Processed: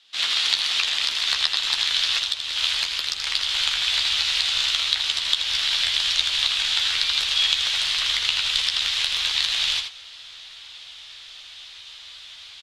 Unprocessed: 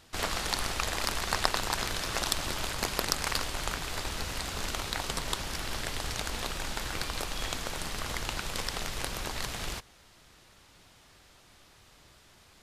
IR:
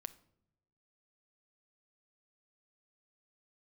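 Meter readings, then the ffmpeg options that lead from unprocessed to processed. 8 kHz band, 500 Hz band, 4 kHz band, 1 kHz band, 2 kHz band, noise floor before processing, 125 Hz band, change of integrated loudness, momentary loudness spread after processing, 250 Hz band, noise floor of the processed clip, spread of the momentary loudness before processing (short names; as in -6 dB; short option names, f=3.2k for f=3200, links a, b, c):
+4.5 dB, n/a, +16.5 dB, -2.0 dB, +9.0 dB, -59 dBFS, under -10 dB, +12.5 dB, 20 LU, under -10 dB, -43 dBFS, 5 LU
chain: -filter_complex "[0:a]asplit=2[a][b];[b]aecho=0:1:80:0.376[c];[a][c]amix=inputs=2:normalize=0,acrossover=split=370|860[d][e][f];[d]acompressor=threshold=-38dB:ratio=4[g];[e]acompressor=threshold=-54dB:ratio=4[h];[f]acompressor=threshold=-36dB:ratio=4[i];[g][h][i]amix=inputs=3:normalize=0,aderivative,asplit=2[j][k];[k]adelay=13,volume=-6.5dB[l];[j][l]amix=inputs=2:normalize=0,acrusher=bits=4:mode=log:mix=0:aa=0.000001,dynaudnorm=f=120:g=3:m=16dB,lowpass=f=3.5k:t=q:w=3.2,asubboost=boost=7.5:cutoff=79,volume=3.5dB"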